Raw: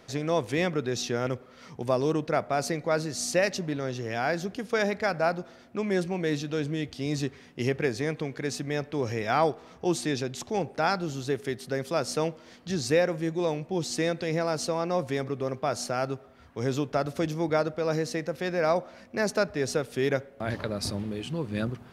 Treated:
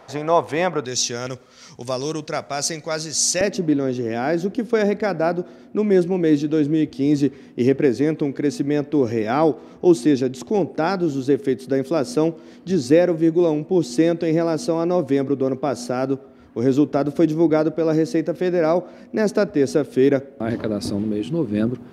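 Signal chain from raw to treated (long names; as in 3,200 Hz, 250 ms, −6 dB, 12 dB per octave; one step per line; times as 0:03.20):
parametric band 870 Hz +14.5 dB 1.6 octaves, from 0:00.85 6,300 Hz, from 0:03.41 300 Hz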